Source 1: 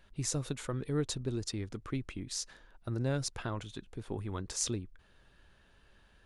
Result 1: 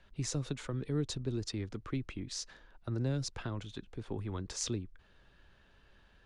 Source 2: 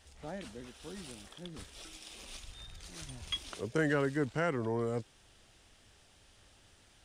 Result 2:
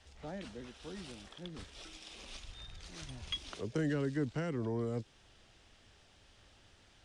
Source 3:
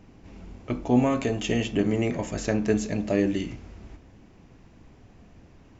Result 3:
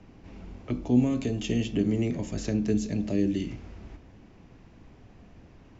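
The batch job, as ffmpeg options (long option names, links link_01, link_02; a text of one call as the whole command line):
ffmpeg -i in.wav -filter_complex "[0:a]lowpass=6100,acrossover=split=280|350|3200[link_01][link_02][link_03][link_04];[link_03]acompressor=threshold=-43dB:ratio=6[link_05];[link_01][link_02][link_05][link_04]amix=inputs=4:normalize=0" out.wav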